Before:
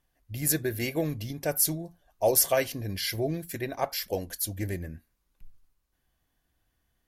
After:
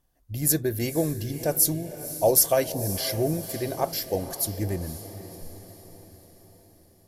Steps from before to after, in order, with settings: bell 2200 Hz -8.5 dB 1.5 oct; diffused feedback echo 0.523 s, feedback 54%, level -12.5 dB; gain +4 dB

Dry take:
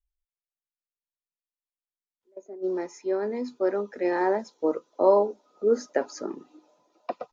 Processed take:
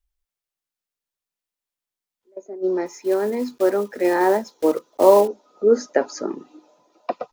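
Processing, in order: 2.86–5.29 block floating point 5-bit; gain +6.5 dB

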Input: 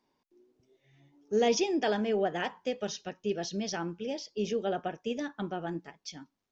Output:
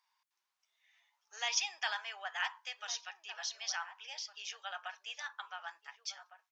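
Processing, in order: steep high-pass 940 Hz 36 dB/oct; outdoor echo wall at 250 m, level -11 dB; gain +1 dB

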